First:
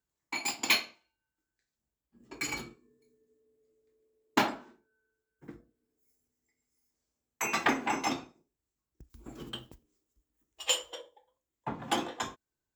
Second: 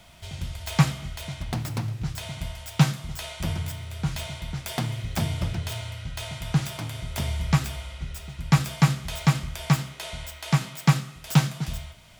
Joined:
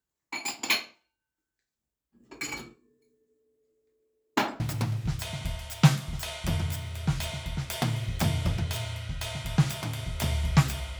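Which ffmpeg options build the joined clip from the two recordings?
ffmpeg -i cue0.wav -i cue1.wav -filter_complex "[0:a]apad=whole_dur=10.99,atrim=end=10.99,atrim=end=4.602[link_01];[1:a]atrim=start=1.558:end=7.95[link_02];[link_01][link_02]acrossfade=duration=0.004:curve1=hsin:curve2=hsin" out.wav

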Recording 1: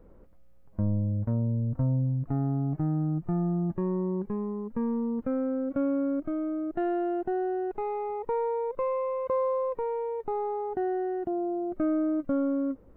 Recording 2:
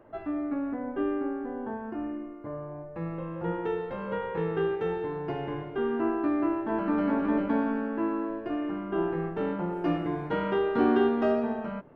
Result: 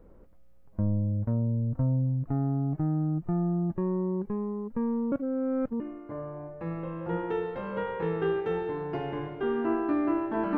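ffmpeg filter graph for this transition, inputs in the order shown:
ffmpeg -i cue0.wav -i cue1.wav -filter_complex "[0:a]apad=whole_dur=10.57,atrim=end=10.57,asplit=2[link_01][link_02];[link_01]atrim=end=5.122[link_03];[link_02]atrim=start=5.118:end=5.802,asetpts=PTS-STARTPTS,areverse[link_04];[1:a]atrim=start=2.148:end=6.92[link_05];[link_03][link_04]acrossfade=duration=0.004:curve1=hsin:curve2=hsin[link_06];[link_06][link_05]acrossfade=duration=0.004:curve1=hsin:curve2=hsin" out.wav

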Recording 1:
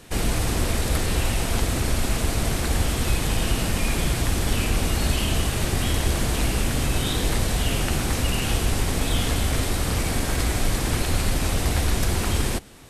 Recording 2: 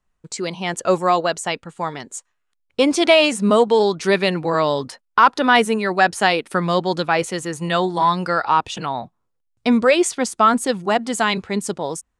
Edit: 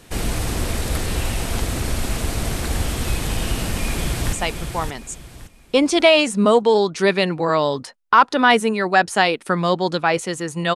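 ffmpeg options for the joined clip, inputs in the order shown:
ffmpeg -i cue0.wav -i cue1.wav -filter_complex "[0:a]apad=whole_dur=10.75,atrim=end=10.75,atrim=end=4.332[link_01];[1:a]atrim=start=1.378:end=7.8[link_02];[link_01][link_02]acrossfade=duration=0.004:curve1=hsin:curve2=hsin,asplit=2[link_03][link_04];[link_04]afade=type=in:start_time=3.67:duration=0.01,afade=type=out:start_time=4.33:duration=0.01,aecho=0:1:570|1140|1710|2280:0.473151|0.141945|0.0425836|0.0127751[link_05];[link_03][link_05]amix=inputs=2:normalize=0" out.wav

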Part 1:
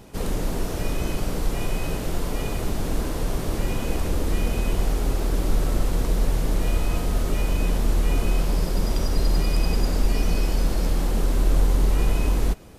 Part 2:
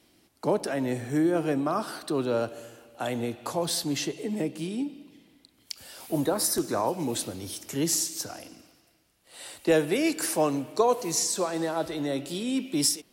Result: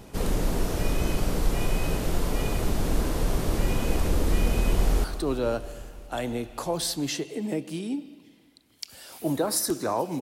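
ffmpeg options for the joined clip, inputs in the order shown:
ffmpeg -i cue0.wav -i cue1.wav -filter_complex "[0:a]apad=whole_dur=10.21,atrim=end=10.21,atrim=end=5.042[link_01];[1:a]atrim=start=1.918:end=7.09[link_02];[link_01][link_02]acrossfade=duration=0.004:curve1=hsin:curve2=hsin,asplit=2[link_03][link_04];[link_04]afade=type=in:start_time=4.75:duration=0.01,afade=type=out:start_time=5.04:duration=0.01,aecho=0:1:170|340|510|680|850|1020|1190|1360|1530|1700|1870|2040:0.199526|0.159621|0.127697|0.102157|0.0817259|0.0653808|0.0523046|0.0418437|0.0334749|0.02678|0.021424|0.0171392[link_05];[link_03][link_05]amix=inputs=2:normalize=0" out.wav

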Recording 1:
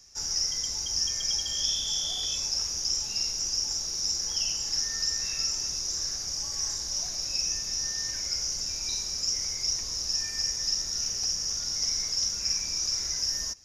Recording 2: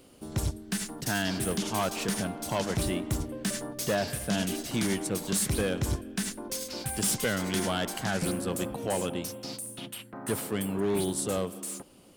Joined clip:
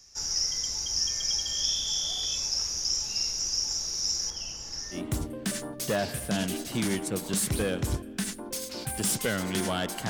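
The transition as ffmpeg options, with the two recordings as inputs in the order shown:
ffmpeg -i cue0.wav -i cue1.wav -filter_complex "[0:a]asettb=1/sr,asplit=3[link_01][link_02][link_03];[link_01]atrim=end=4.304[link_04];[link_02]atrim=start=4.3:end=5.02,asetpts=PTS-STARTPTS,afade=type=in:duration=0.004:curve=qsin,afade=type=out:start_time=0.716:duration=0.004:curve=qsin,highshelf=frequency=2000:gain=-9.5[link_05];[link_03]atrim=start=5.016[link_06];[link_04][link_05]acrossfade=duration=0.004:curve1=hsin:curve2=qsin[link_07];[link_07][link_06]acrossfade=duration=0.004:curve1=qsin:curve2=hsin,apad=whole_dur=10.09,atrim=end=10.09,atrim=end=5.02,asetpts=PTS-STARTPTS[link_08];[1:a]atrim=start=2.89:end=8.08,asetpts=PTS-STARTPTS[link_09];[link_08][link_09]acrossfade=duration=0.12:curve1=tri:curve2=tri" out.wav

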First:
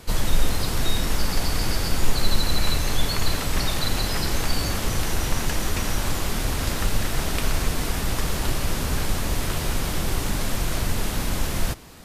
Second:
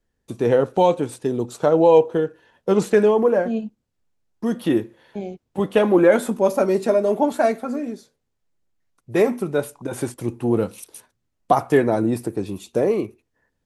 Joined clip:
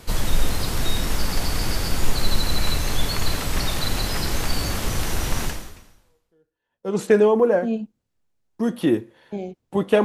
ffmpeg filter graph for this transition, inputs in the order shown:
ffmpeg -i cue0.wav -i cue1.wav -filter_complex "[0:a]apad=whole_dur=10.04,atrim=end=10.04,atrim=end=7.03,asetpts=PTS-STARTPTS[link_01];[1:a]atrim=start=1.28:end=5.87,asetpts=PTS-STARTPTS[link_02];[link_01][link_02]acrossfade=duration=1.58:curve1=exp:curve2=exp" out.wav

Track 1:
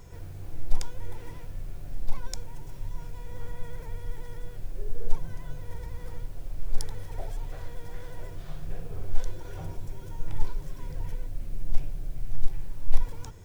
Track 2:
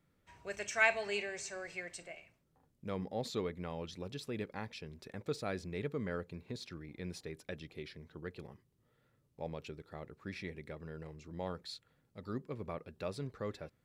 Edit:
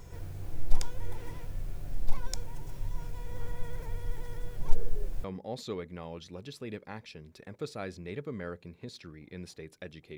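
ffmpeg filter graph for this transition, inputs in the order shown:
ffmpeg -i cue0.wav -i cue1.wav -filter_complex "[0:a]apad=whole_dur=10.17,atrim=end=10.17,asplit=2[link_01][link_02];[link_01]atrim=end=4.602[link_03];[link_02]atrim=start=4.598:end=5.242,asetpts=PTS-STARTPTS,areverse[link_04];[1:a]atrim=start=2.908:end=7.84[link_05];[link_03][link_04]acrossfade=duration=0.004:curve1=hsin:curve2=hsin[link_06];[link_06][link_05]acrossfade=duration=0.004:curve1=hsin:curve2=hsin" out.wav

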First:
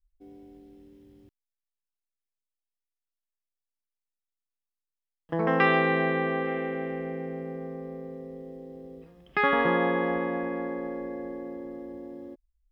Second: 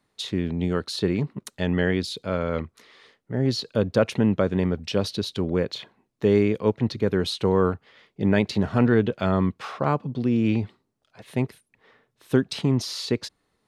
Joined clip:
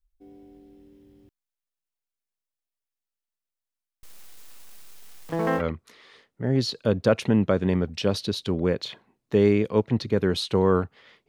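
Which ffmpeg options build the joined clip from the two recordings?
ffmpeg -i cue0.wav -i cue1.wav -filter_complex "[0:a]asettb=1/sr,asplit=3[link_01][link_02][link_03];[link_01]atrim=end=4.034[link_04];[link_02]atrim=start=4.03:end=5.62,asetpts=PTS-STARTPTS,afade=type=in:duration=0.004:curve=qsin,afade=type=out:start_time=1.586:duration=0.004:curve=qsin,aeval=exprs='val(0)+0.5*0.0168*sgn(val(0))':channel_layout=same[link_05];[link_03]atrim=start=5.616[link_06];[link_04][link_05]acrossfade=duration=0.004:curve1=hsin:curve2=qsin[link_07];[link_07][link_06]acrossfade=duration=0.004:curve1=qsin:curve2=hsin,apad=whole_dur=11.28,atrim=end=11.28,atrim=end=5.62,asetpts=PTS-STARTPTS[link_08];[1:a]atrim=start=2.46:end=8.18,asetpts=PTS-STARTPTS[link_09];[link_08][link_09]acrossfade=duration=0.06:curve1=tri:curve2=tri" out.wav

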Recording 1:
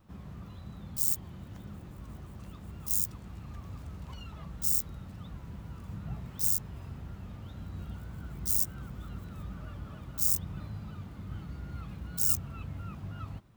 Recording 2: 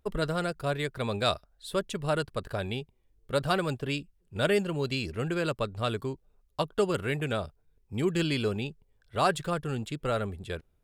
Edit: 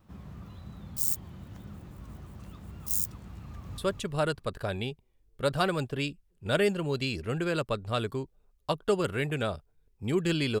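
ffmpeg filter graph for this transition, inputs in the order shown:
ffmpeg -i cue0.wav -i cue1.wav -filter_complex "[0:a]apad=whole_dur=10.6,atrim=end=10.6,atrim=end=3.782[link_01];[1:a]atrim=start=1.678:end=8.5[link_02];[link_01][link_02]acrossfade=duration=0.004:curve1=hsin:curve2=hsin,asplit=2[link_03][link_04];[link_04]afade=type=in:start_time=3.44:duration=0.01,afade=type=out:start_time=3.78:duration=0.01,aecho=0:1:220|440|660|880:0.595662|0.178699|0.0536096|0.0160829[link_05];[link_03][link_05]amix=inputs=2:normalize=0" out.wav

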